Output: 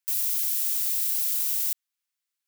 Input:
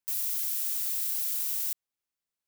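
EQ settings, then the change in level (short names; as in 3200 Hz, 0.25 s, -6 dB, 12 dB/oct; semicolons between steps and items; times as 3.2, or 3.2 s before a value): HPF 1400 Hz 12 dB/oct; +4.5 dB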